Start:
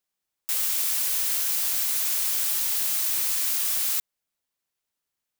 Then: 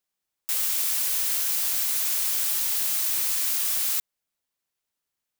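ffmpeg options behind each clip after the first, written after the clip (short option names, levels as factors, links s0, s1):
-af anull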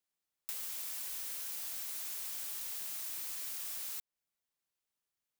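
-filter_complex "[0:a]acrossover=split=840|2400[s0][s1][s2];[s0]acompressor=threshold=0.00112:ratio=4[s3];[s1]acompressor=threshold=0.002:ratio=4[s4];[s2]acompressor=threshold=0.02:ratio=4[s5];[s3][s4][s5]amix=inputs=3:normalize=0,volume=0.501"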